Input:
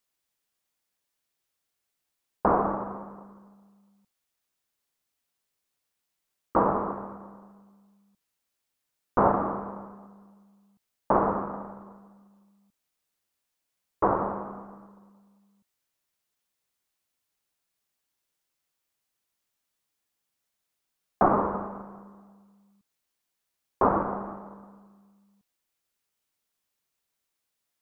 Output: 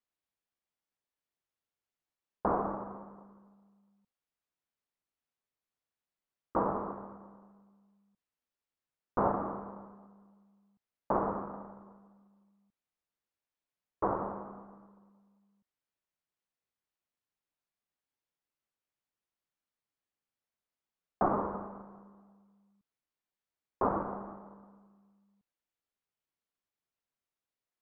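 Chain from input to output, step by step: LPF 2000 Hz 6 dB/oct; gain -7 dB

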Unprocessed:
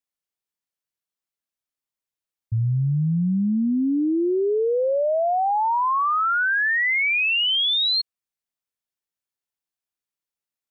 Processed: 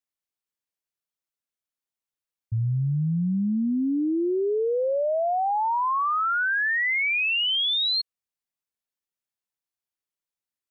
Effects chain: 2.79–3.35 LPF 1500 Hz 6 dB/oct; gain -3 dB

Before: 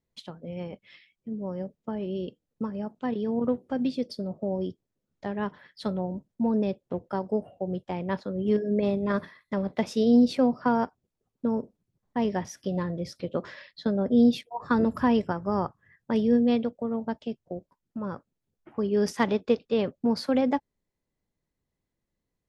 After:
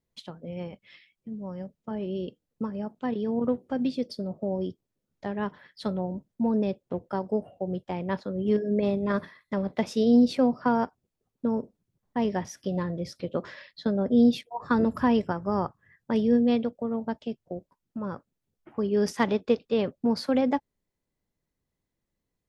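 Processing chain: 0.68–1.91 dynamic EQ 410 Hz, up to -7 dB, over -47 dBFS, Q 0.94

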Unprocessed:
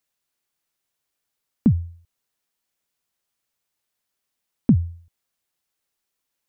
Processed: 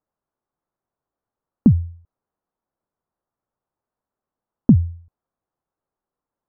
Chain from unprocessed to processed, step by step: LPF 1200 Hz 24 dB/oct; gain +4 dB

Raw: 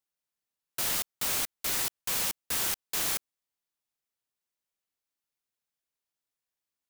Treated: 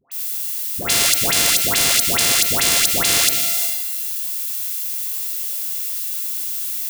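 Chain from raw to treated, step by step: sample sorter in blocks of 64 samples; HPF 51 Hz; band shelf 4800 Hz +15 dB 2.8 oct; in parallel at 0 dB: level quantiser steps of 18 dB; on the sum: graphic EQ 125/250/500/1000/2000/4000/8000 Hz +8/+6/+5/-8/+4/+9/+7 dB; added noise violet -47 dBFS; dispersion highs, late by 0.118 s, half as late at 1000 Hz; transient shaper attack -5 dB, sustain +9 dB; reverb RT60 1.2 s, pre-delay 24 ms, DRR 17 dB; spectral compressor 4:1; gain -1 dB

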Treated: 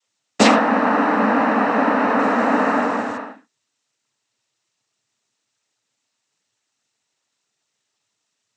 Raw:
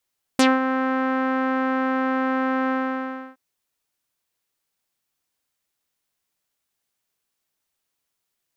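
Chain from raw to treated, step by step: non-linear reverb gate 0.14 s falling, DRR 5 dB; 2.18–3.16 added noise pink -49 dBFS; noise vocoder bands 12; gain +6 dB

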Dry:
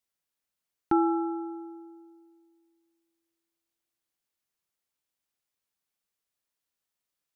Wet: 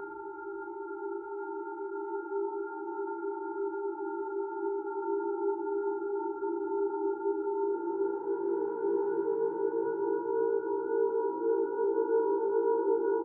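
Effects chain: frequency-shifting echo 0.361 s, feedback 33%, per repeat +59 Hz, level -5 dB; negative-ratio compressor -38 dBFS, ratio -1; granular stretch 1.8×, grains 89 ms; treble ducked by the level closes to 820 Hz, closed at -34 dBFS; Paulstretch 16×, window 0.25 s, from 2.38; gain +6 dB

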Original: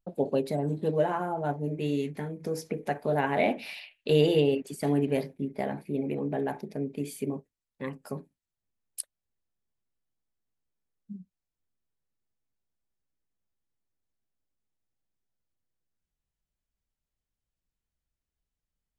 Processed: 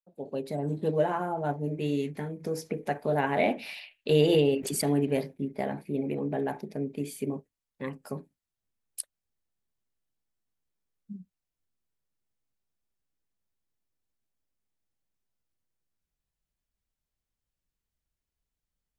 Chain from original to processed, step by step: opening faded in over 0.78 s; 4.29–4.85 backwards sustainer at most 31 dB/s

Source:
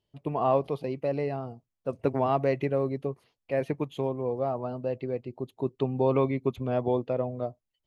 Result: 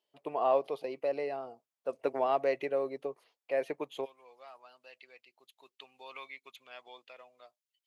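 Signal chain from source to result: Chebyshev high-pass 570 Hz, order 2, from 4.04 s 2500 Hz; dynamic EQ 1000 Hz, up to -4 dB, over -42 dBFS, Q 1.3

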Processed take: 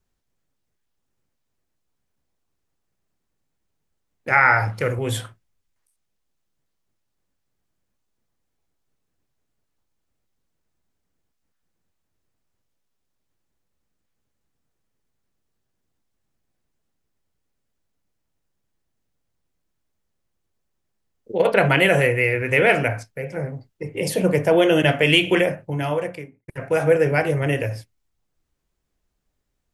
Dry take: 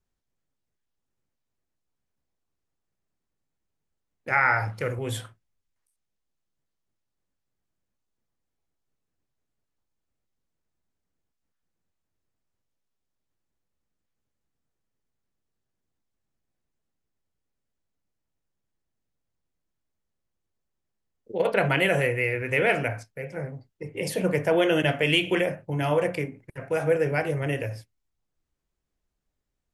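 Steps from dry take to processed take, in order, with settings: 23.05–24.81 dynamic EQ 1700 Hz, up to -4 dB, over -41 dBFS, Q 1; 25.4–26.48 fade out; gain +6 dB

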